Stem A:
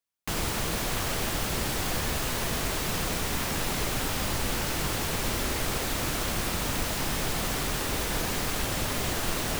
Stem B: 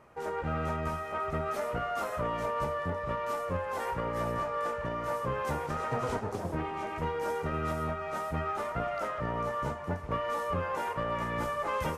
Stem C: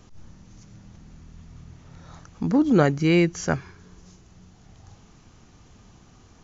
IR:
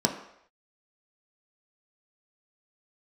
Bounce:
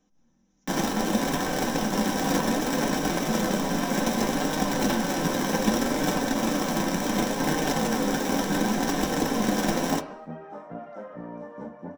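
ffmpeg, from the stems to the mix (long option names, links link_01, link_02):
-filter_complex "[0:a]acrusher=bits=5:dc=4:mix=0:aa=0.000001,highshelf=frequency=2800:gain=-8.5,adelay=400,volume=1.5dB,asplit=2[link_01][link_02];[link_02]volume=-5.5dB[link_03];[1:a]lowpass=frequency=1300:poles=1,adelay=1950,volume=-11dB,asplit=2[link_04][link_05];[link_05]volume=-3.5dB[link_06];[2:a]volume=-18dB,asplit=2[link_07][link_08];[link_08]volume=-12.5dB[link_09];[3:a]atrim=start_sample=2205[link_10];[link_03][link_06][link_09]amix=inputs=3:normalize=0[link_11];[link_11][link_10]afir=irnorm=-1:irlink=0[link_12];[link_01][link_04][link_07][link_12]amix=inputs=4:normalize=0,lowshelf=frequency=330:gain=-3,aecho=1:1:3.9:0.39,flanger=delay=6.5:depth=5:regen=-41:speed=0.66:shape=sinusoidal"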